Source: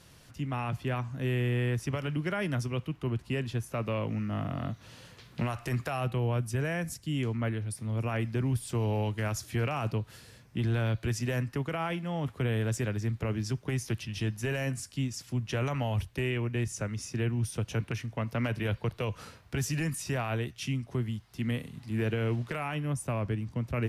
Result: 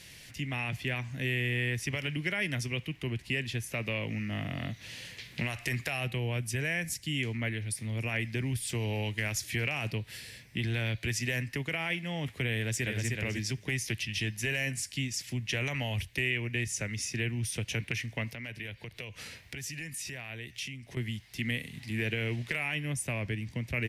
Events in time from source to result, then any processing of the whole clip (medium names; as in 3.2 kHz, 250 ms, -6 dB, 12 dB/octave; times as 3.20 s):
9.90–10.68 s: band-stop 6.6 kHz
12.55–13.07 s: echo throw 310 ms, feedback 10%, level -3.5 dB
18.32–20.97 s: compression 3:1, threshold -45 dBFS
whole clip: resonant high shelf 1.6 kHz +7.5 dB, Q 3; compression 1.5:1, threshold -35 dBFS